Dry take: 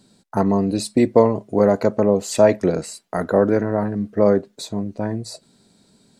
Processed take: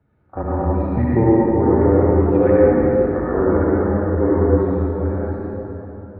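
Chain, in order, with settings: pre-echo 39 ms -24 dB; reverberation RT60 3.9 s, pre-delay 63 ms, DRR -8 dB; mistuned SSB -120 Hz 190–2200 Hz; trim -6 dB

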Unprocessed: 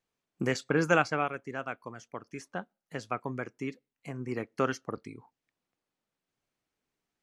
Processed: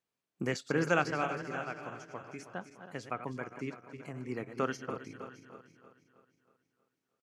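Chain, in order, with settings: backward echo that repeats 159 ms, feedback 69%, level -10 dB; high-pass 78 Hz; on a send: delay 612 ms -18 dB; on the sum: trim -4 dB

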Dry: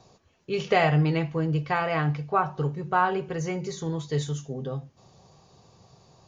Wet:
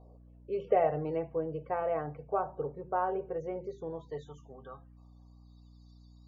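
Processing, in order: loudest bins only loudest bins 64; band-pass sweep 540 Hz -> 3.7 kHz, 3.80–5.76 s; hum 60 Hz, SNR 20 dB

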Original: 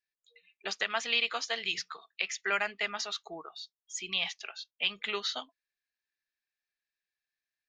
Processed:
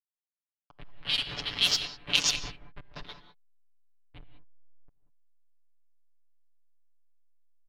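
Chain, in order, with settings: reverse spectral sustain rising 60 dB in 0.47 s; Doppler pass-by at 2.07 s, 11 m/s, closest 3.7 m; Chebyshev band-stop 170–3100 Hz, order 4; dynamic bell 5 kHz, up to +4 dB, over -50 dBFS, Q 0.94; level-controlled noise filter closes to 2.4 kHz, open at -33 dBFS; ten-band graphic EQ 250 Hz +10 dB, 500 Hz -10 dB, 2 kHz +4 dB, 4 kHz +5 dB; filtered feedback delay 197 ms, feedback 39%, low-pass 1.8 kHz, level -3.5 dB; hysteresis with a dead band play -27 dBFS; comb 6.9 ms, depth 69%; gated-style reverb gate 220 ms rising, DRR 9.5 dB; level-controlled noise filter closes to 1.2 kHz, open at -27 dBFS; trim +8 dB

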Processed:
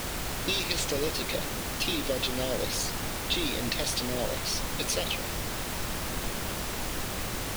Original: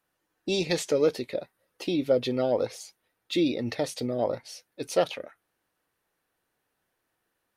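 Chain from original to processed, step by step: resonant high shelf 1.9 kHz +12 dB, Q 1.5; compression, threshold -28 dBFS, peak gain reduction 13.5 dB; added noise pink -33 dBFS

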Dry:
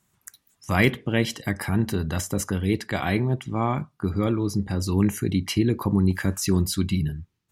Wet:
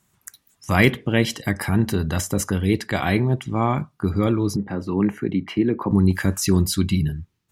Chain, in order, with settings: 4.56–5.91 s: three-band isolator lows -16 dB, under 160 Hz, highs -24 dB, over 2.5 kHz; trim +3.5 dB

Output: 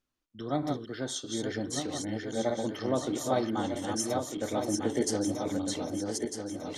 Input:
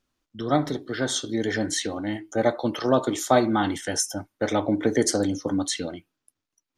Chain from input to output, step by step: backward echo that repeats 625 ms, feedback 62%, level -3.5 dB; dynamic bell 1.6 kHz, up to -5 dB, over -37 dBFS, Q 0.86; trim -8 dB

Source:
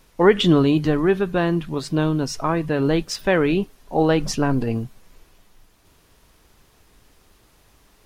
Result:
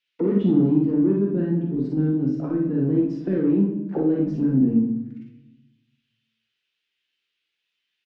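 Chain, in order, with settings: high-order bell 840 Hz -10 dB 1.3 oct; waveshaping leveller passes 3; auto-wah 240–3000 Hz, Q 3, down, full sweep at -11.5 dBFS; distance through air 70 m; doubling 15 ms -11 dB; early reflections 45 ms -5 dB, 58 ms -4.5 dB; simulated room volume 330 m³, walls mixed, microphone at 0.81 m; trim -6.5 dB

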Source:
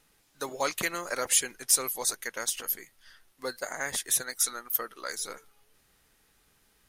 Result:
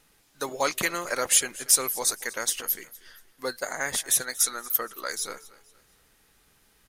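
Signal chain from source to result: feedback delay 235 ms, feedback 38%, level -20 dB; trim +3.5 dB

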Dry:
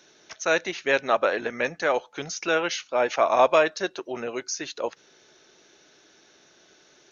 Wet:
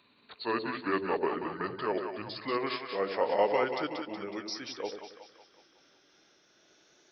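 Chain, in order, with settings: pitch bend over the whole clip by -7 st ending unshifted; two-band feedback delay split 570 Hz, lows 91 ms, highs 185 ms, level -6 dB; trim -7.5 dB

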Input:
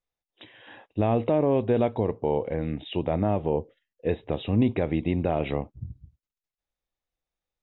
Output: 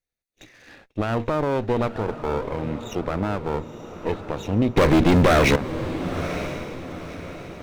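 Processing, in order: comb filter that takes the minimum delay 0.47 ms; 4.77–5.56 s: waveshaping leveller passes 5; on a send: echo that smears into a reverb 947 ms, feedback 43%, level -11 dB; on the sum: trim +2 dB

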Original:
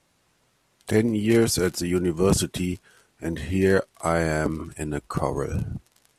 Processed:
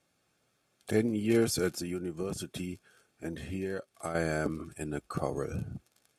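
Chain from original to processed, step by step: 1.70–4.15 s: compression 6:1, threshold -25 dBFS, peak gain reduction 10.5 dB; comb of notches 990 Hz; trim -6.5 dB

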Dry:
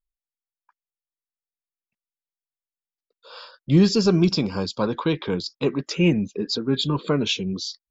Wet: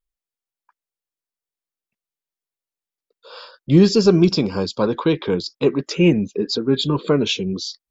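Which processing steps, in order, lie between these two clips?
peaking EQ 410 Hz +4.5 dB 1 oct; trim +2 dB

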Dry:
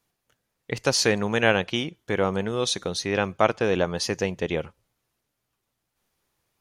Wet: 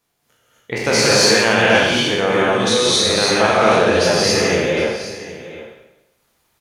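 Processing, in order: spectral sustain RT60 0.96 s; bass shelf 120 Hz -6 dB; delay 764 ms -15.5 dB; gated-style reverb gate 290 ms rising, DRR -6 dB; in parallel at 0 dB: peak limiter -8.5 dBFS, peak gain reduction 8 dB; on the sum: trim -4 dB

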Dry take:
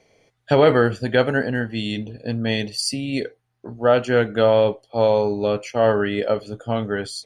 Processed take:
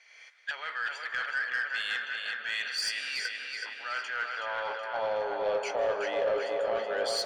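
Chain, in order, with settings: recorder AGC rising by 42 dB/s; low-pass 8.5 kHz 12 dB/octave; reverse; compression 16:1, threshold -26 dBFS, peak gain reduction 18 dB; reverse; high-pass sweep 1.6 kHz -> 550 Hz, 3.86–5.33 s; filtered feedback delay 373 ms, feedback 69%, low-pass 4.9 kHz, level -4 dB; on a send at -10 dB: reverberation RT60 2.9 s, pre-delay 139 ms; on the sum: overdrive pedal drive 13 dB, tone 6.5 kHz, clips at -12.5 dBFS; trim -7.5 dB

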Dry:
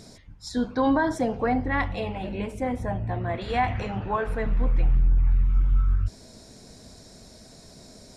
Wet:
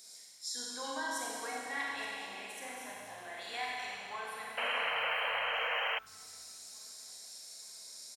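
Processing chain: high-pass 240 Hz 6 dB/octave; differentiator; on a send: feedback delay 871 ms, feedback 48%, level -16 dB; on the sum: Schroeder reverb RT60 2.4 s, combs from 32 ms, DRR -4 dB; painted sound noise, 4.57–5.99 s, 440–3200 Hz -34 dBFS

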